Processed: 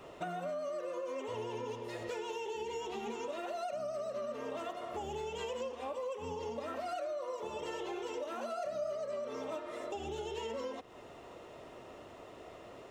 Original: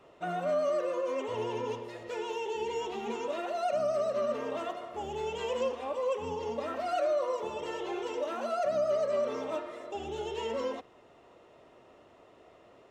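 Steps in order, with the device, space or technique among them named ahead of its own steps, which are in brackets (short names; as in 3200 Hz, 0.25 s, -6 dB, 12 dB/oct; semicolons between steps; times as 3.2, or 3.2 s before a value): ASMR close-microphone chain (low shelf 110 Hz +4 dB; compressor 6:1, threshold -44 dBFS, peak gain reduction 17 dB; high shelf 6500 Hz +7 dB); 8.53–8.95 flutter echo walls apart 4.9 m, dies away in 0.23 s; gain +6 dB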